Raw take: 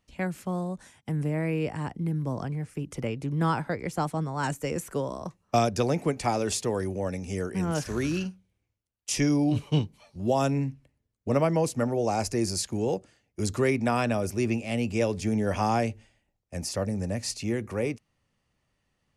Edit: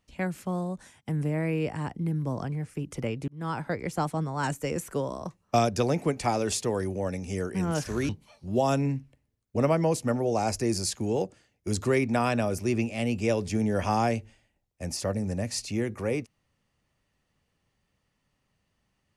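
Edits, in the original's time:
0:03.28–0:03.72: fade in
0:08.09–0:09.81: remove

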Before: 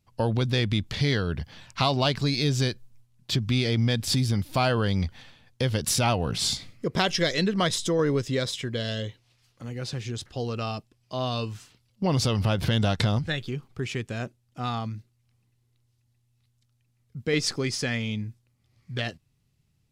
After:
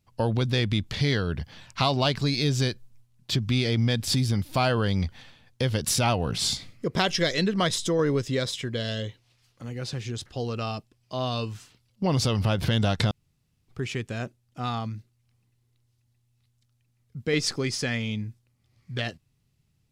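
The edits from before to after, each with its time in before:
0:13.11–0:13.68: fill with room tone

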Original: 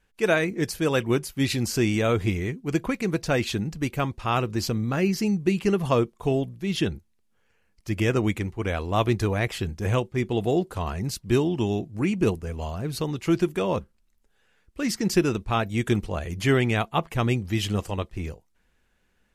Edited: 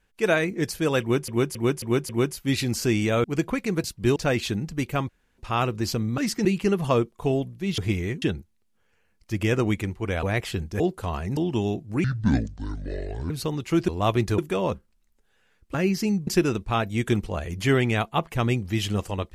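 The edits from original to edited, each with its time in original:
0:01.01–0:01.28: repeat, 5 plays
0:02.16–0:02.60: move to 0:06.79
0:04.13: splice in room tone 0.29 s
0:04.93–0:05.46: swap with 0:14.80–0:15.07
0:08.80–0:09.30: move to 0:13.44
0:09.87–0:10.53: remove
0:11.10–0:11.42: move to 0:03.20
0:12.09–0:12.86: play speed 61%

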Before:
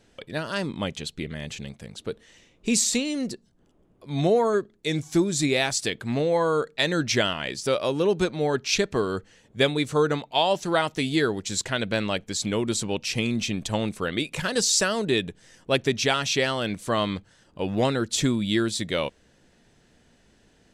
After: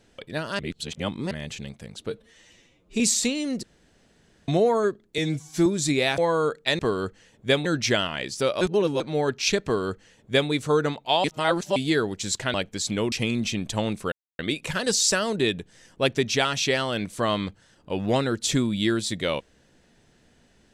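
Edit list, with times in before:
0:00.59–0:01.31: reverse
0:02.10–0:02.70: time-stretch 1.5×
0:03.33–0:04.18: fill with room tone
0:04.88–0:05.20: time-stretch 1.5×
0:05.72–0:06.30: remove
0:07.87–0:08.26: reverse
0:08.90–0:09.76: duplicate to 0:06.91
0:10.50–0:11.02: reverse
0:11.80–0:12.09: remove
0:12.67–0:13.08: remove
0:14.08: splice in silence 0.27 s

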